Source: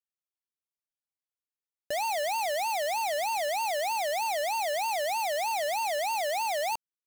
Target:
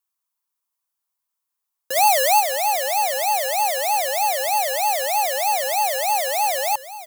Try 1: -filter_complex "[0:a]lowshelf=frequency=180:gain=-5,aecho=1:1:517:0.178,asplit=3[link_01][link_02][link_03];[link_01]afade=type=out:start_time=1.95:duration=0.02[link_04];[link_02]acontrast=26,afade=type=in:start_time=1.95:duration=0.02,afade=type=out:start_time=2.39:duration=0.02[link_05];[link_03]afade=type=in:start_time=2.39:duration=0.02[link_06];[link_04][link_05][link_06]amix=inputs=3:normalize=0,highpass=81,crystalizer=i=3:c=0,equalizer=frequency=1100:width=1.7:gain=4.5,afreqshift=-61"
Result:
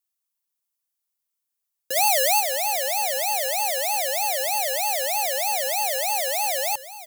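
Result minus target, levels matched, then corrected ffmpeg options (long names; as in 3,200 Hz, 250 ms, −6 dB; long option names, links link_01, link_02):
1,000 Hz band −4.0 dB
-filter_complex "[0:a]lowshelf=frequency=180:gain=-5,aecho=1:1:517:0.178,asplit=3[link_01][link_02][link_03];[link_01]afade=type=out:start_time=1.95:duration=0.02[link_04];[link_02]acontrast=26,afade=type=in:start_time=1.95:duration=0.02,afade=type=out:start_time=2.39:duration=0.02[link_05];[link_03]afade=type=in:start_time=2.39:duration=0.02[link_06];[link_04][link_05][link_06]amix=inputs=3:normalize=0,highpass=81,crystalizer=i=3:c=0,equalizer=frequency=1100:width=1.7:gain=15.5,afreqshift=-61"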